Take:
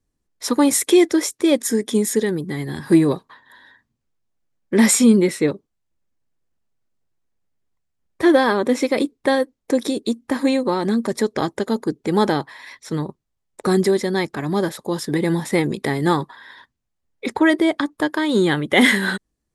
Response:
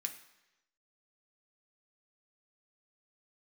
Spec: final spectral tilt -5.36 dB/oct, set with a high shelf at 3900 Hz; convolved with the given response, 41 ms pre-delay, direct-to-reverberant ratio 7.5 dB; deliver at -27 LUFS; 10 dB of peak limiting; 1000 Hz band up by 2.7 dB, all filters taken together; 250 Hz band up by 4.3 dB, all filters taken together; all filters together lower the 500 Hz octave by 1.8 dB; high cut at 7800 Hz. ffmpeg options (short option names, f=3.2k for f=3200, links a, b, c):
-filter_complex "[0:a]lowpass=7.8k,equalizer=f=250:t=o:g=7.5,equalizer=f=500:t=o:g=-7.5,equalizer=f=1k:t=o:g=5.5,highshelf=f=3.9k:g=-3,alimiter=limit=-9dB:level=0:latency=1,asplit=2[a][b];[1:a]atrim=start_sample=2205,adelay=41[c];[b][c]afir=irnorm=-1:irlink=0,volume=-6dB[d];[a][d]amix=inputs=2:normalize=0,volume=-8dB"